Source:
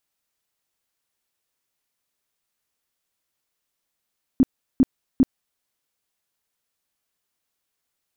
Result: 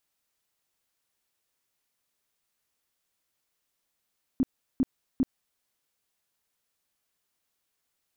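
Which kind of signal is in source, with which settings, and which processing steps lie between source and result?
tone bursts 262 Hz, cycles 8, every 0.40 s, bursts 3, -10.5 dBFS
limiter -19.5 dBFS

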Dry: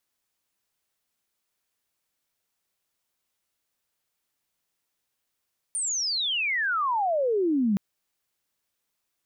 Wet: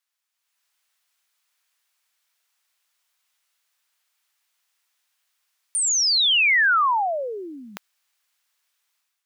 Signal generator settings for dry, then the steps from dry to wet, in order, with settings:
chirp logarithmic 9300 Hz -> 190 Hz -25.5 dBFS -> -20 dBFS 2.02 s
HPF 1100 Hz 12 dB/oct; high shelf 6900 Hz -5 dB; AGC gain up to 9.5 dB

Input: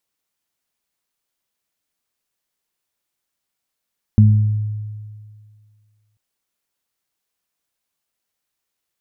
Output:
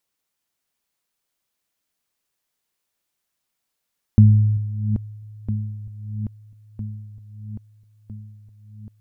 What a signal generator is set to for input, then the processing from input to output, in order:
additive tone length 1.99 s, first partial 106 Hz, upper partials -5 dB, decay 2.02 s, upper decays 0.69 s, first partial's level -6 dB
regenerating reverse delay 0.653 s, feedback 70%, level -9 dB

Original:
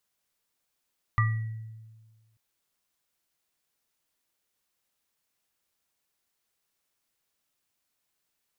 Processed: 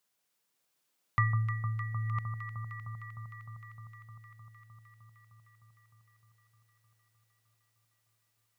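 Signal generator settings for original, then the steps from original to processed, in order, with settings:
sine partials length 1.19 s, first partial 111 Hz, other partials 1190/1940 Hz, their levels -2/-7 dB, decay 1.53 s, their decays 0.28/0.64 s, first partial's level -20 dB
reverse delay 0.561 s, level -8 dB; HPF 110 Hz; on a send: echo with dull and thin repeats by turns 0.153 s, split 1200 Hz, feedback 88%, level -7 dB

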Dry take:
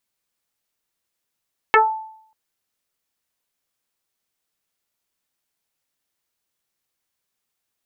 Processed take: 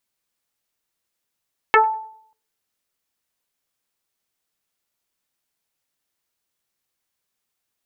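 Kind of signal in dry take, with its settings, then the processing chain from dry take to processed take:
FM tone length 0.59 s, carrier 877 Hz, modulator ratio 0.5, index 3.8, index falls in 0.24 s exponential, decay 0.65 s, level -6 dB
darkening echo 97 ms, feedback 44%, low-pass 830 Hz, level -23 dB

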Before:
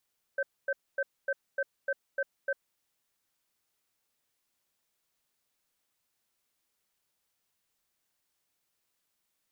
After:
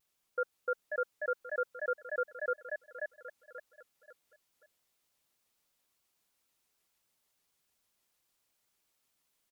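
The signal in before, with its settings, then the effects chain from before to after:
cadence 553 Hz, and 1550 Hz, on 0.05 s, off 0.25 s, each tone -29.5 dBFS 2.27 s
notch 1700 Hz, Q 12; on a send: feedback echo 0.533 s, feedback 34%, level -5 dB; on the sum: shaped vibrato square 6.7 Hz, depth 160 cents

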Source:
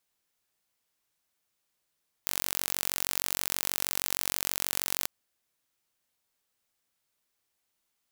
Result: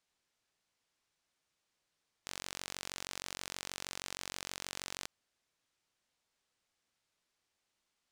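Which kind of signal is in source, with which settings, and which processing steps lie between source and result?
pulse train 46.3/s, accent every 0, -2.5 dBFS 2.79 s
LPF 7000 Hz 12 dB/oct; limiter -18.5 dBFS

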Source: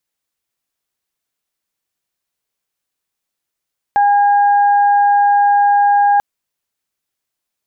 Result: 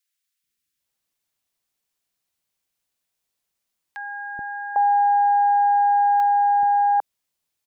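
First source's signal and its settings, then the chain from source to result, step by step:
steady additive tone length 2.24 s, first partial 814 Hz, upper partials -14 dB, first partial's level -8.5 dB
limiter -13 dBFS; three bands offset in time highs, lows, mids 0.43/0.8 s, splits 380/1400 Hz

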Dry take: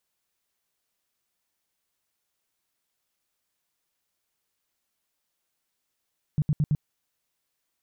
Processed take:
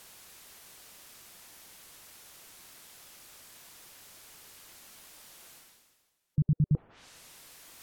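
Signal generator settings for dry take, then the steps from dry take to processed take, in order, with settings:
tone bursts 150 Hz, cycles 6, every 0.11 s, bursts 4, -19 dBFS
treble ducked by the level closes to 810 Hz, closed at -28.5 dBFS; spectral gate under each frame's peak -30 dB strong; reverse; upward compressor, threshold -30 dBFS; reverse

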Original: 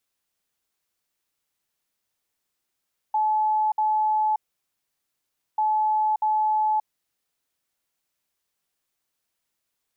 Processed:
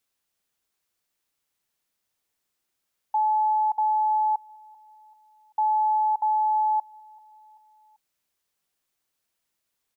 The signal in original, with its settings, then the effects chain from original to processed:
beep pattern sine 860 Hz, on 0.58 s, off 0.06 s, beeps 2, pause 1.22 s, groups 2, -19 dBFS
feedback echo 0.388 s, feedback 49%, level -23.5 dB

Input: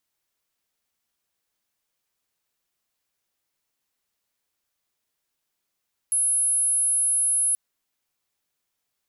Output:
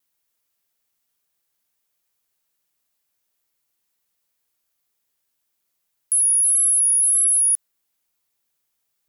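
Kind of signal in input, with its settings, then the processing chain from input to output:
tone sine 10600 Hz -19 dBFS 1.43 s
high shelf 9900 Hz +9 dB; vibrato 1.7 Hz 38 cents

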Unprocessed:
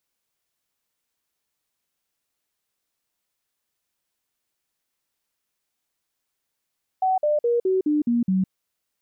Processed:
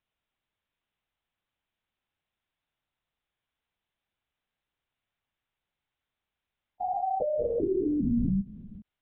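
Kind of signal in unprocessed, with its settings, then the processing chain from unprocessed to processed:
stepped sine 753 Hz down, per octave 3, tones 7, 0.16 s, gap 0.05 s -17.5 dBFS
stepped spectrum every 0.4 s; LPC vocoder at 8 kHz whisper

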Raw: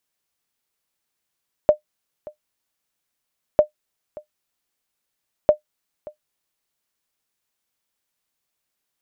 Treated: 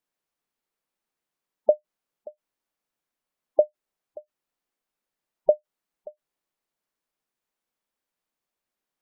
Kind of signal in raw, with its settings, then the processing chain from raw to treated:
sonar ping 604 Hz, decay 0.11 s, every 1.90 s, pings 3, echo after 0.58 s, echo -22.5 dB -3.5 dBFS
bell 84 Hz -12.5 dB 1.1 oct; spectral gate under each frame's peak -20 dB strong; high shelf 2000 Hz -10.5 dB

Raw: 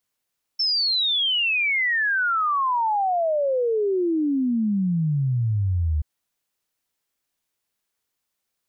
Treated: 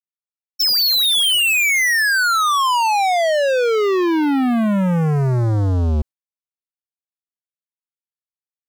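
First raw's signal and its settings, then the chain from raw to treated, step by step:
log sweep 5400 Hz -> 73 Hz 5.43 s -19 dBFS
gate with hold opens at -19 dBFS; dynamic EQ 3200 Hz, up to +4 dB, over -38 dBFS, Q 1.2; sample leveller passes 5

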